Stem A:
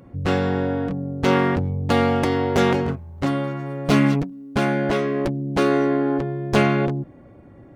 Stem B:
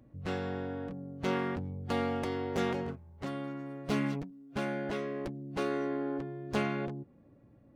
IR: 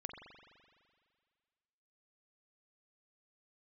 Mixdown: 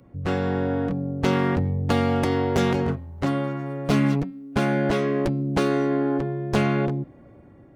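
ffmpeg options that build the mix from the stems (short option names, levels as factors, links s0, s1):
-filter_complex "[0:a]dynaudnorm=f=180:g=7:m=3.76,volume=0.473[s0];[1:a]lowpass=2600,volume=0.944[s1];[s0][s1]amix=inputs=2:normalize=0,bandreject=f=266.1:t=h:w=4,bandreject=f=532.2:t=h:w=4,bandreject=f=798.3:t=h:w=4,bandreject=f=1064.4:t=h:w=4,bandreject=f=1330.5:t=h:w=4,bandreject=f=1596.6:t=h:w=4,bandreject=f=1862.7:t=h:w=4,bandreject=f=2128.8:t=h:w=4,bandreject=f=2394.9:t=h:w=4,bandreject=f=2661:t=h:w=4,bandreject=f=2927.1:t=h:w=4,bandreject=f=3193.2:t=h:w=4,bandreject=f=3459.3:t=h:w=4,bandreject=f=3725.4:t=h:w=4,bandreject=f=3991.5:t=h:w=4,bandreject=f=4257.6:t=h:w=4,bandreject=f=4523.7:t=h:w=4,bandreject=f=4789.8:t=h:w=4,acrossover=split=220|3000[s2][s3][s4];[s3]acompressor=threshold=0.0891:ratio=6[s5];[s2][s5][s4]amix=inputs=3:normalize=0"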